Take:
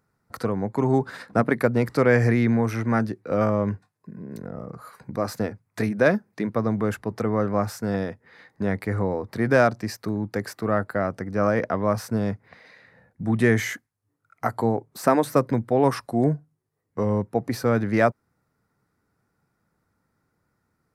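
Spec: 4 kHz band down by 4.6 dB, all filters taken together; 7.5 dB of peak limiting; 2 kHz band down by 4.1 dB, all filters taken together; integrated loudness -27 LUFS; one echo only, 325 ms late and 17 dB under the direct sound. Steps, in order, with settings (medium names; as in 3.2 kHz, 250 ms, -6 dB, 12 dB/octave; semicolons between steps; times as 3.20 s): peaking EQ 2 kHz -4.5 dB; peaking EQ 4 kHz -5 dB; peak limiter -13 dBFS; delay 325 ms -17 dB; trim -1 dB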